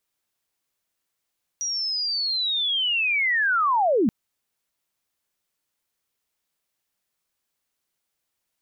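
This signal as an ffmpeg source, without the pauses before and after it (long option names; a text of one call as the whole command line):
ffmpeg -f lavfi -i "aevalsrc='pow(10,(-24.5+8*t/2.48)/20)*sin(2*PI*(5800*t-5610*t*t/(2*2.48)))':duration=2.48:sample_rate=44100" out.wav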